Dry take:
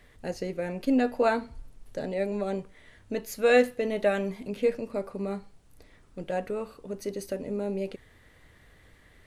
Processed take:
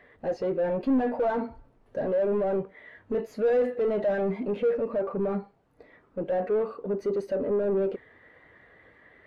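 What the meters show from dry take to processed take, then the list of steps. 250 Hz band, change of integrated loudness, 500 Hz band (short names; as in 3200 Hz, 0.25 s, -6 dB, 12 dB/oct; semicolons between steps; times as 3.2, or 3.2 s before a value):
+0.5 dB, +1.5 dB, +2.5 dB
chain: overdrive pedal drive 39 dB, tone 1100 Hz, clips at -8.5 dBFS; spectral expander 1.5:1; gain -7 dB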